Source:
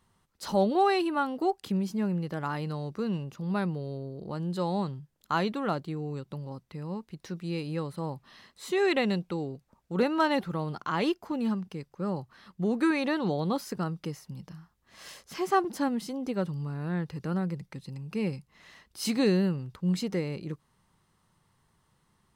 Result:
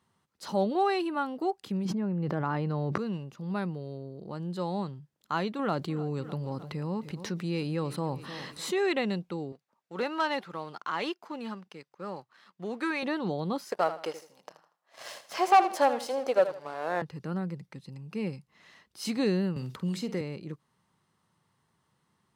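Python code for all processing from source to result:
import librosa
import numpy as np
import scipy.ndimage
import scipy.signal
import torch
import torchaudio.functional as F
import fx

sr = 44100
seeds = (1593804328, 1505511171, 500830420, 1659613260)

y = fx.chain(x, sr, fx.lowpass(hz=1400.0, slope=6),
    fx.env_flatten(amount_pct=100), at=(1.85, 2.98))
y = fx.chain(y, sr, fx.echo_feedback(ms=304, feedback_pct=38, wet_db=-20.5),
    fx.env_flatten(amount_pct=50), at=(5.59, 8.92))
y = fx.chain(y, sr, fx.highpass(hz=830.0, slope=6),
    fx.high_shelf(hz=7900.0, db=-7.5),
    fx.leveller(passes=1), at=(9.52, 13.03))
y = fx.chain(y, sr, fx.highpass_res(hz=620.0, q=3.2),
    fx.leveller(passes=2),
    fx.echo_feedback(ms=79, feedback_pct=30, wet_db=-12), at=(13.71, 17.02))
y = fx.chain(y, sr, fx.high_shelf(hz=7600.0, db=3.5),
    fx.doubler(ms=47.0, db=-11),
    fx.band_squash(depth_pct=70), at=(19.56, 20.21))
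y = scipy.signal.sosfilt(scipy.signal.butter(2, 110.0, 'highpass', fs=sr, output='sos'), y)
y = fx.high_shelf(y, sr, hz=10000.0, db=-6.5)
y = y * librosa.db_to_amplitude(-2.5)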